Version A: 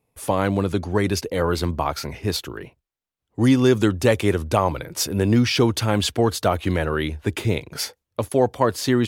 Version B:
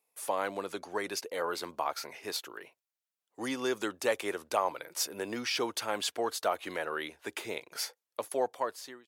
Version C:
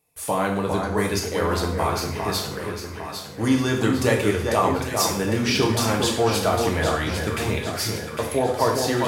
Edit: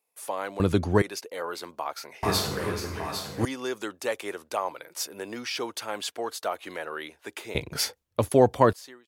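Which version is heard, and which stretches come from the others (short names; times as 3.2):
B
0.6–1.02 from A
2.23–3.45 from C
7.55–8.73 from A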